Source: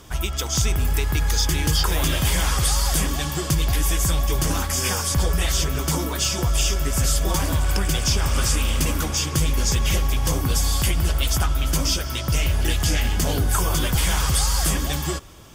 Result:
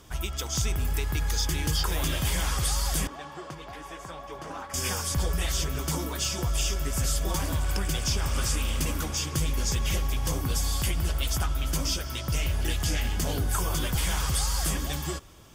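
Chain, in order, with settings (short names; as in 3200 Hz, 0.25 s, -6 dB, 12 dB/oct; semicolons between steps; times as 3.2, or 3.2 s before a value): 3.07–4.74 band-pass 830 Hz, Q 0.94; gain -6.5 dB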